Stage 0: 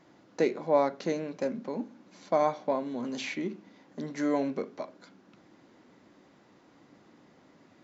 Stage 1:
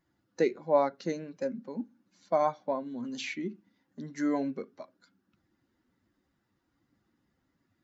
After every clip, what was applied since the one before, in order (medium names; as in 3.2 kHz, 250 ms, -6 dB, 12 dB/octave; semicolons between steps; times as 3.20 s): expander on every frequency bin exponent 1.5; trim +1 dB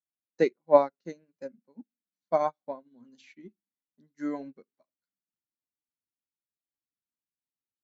upward expansion 2.5:1, over -47 dBFS; trim +7.5 dB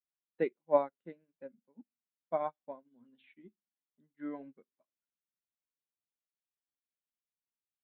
resampled via 8 kHz; trim -8 dB